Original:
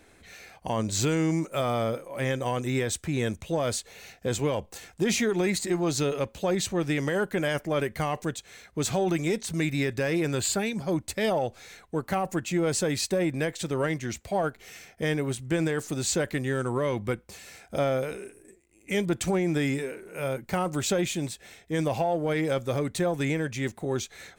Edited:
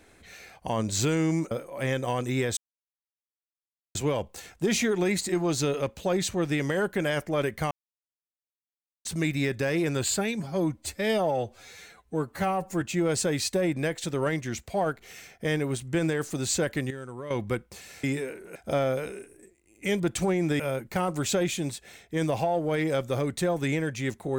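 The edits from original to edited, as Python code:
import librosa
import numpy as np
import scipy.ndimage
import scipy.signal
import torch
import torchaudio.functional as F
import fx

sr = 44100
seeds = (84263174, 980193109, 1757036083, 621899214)

y = fx.edit(x, sr, fx.cut(start_s=1.51, length_s=0.38),
    fx.silence(start_s=2.95, length_s=1.38),
    fx.silence(start_s=8.09, length_s=1.34),
    fx.stretch_span(start_s=10.78, length_s=1.61, factor=1.5),
    fx.clip_gain(start_s=16.48, length_s=0.4, db=-11.0),
    fx.move(start_s=19.65, length_s=0.52, to_s=17.61), tone=tone)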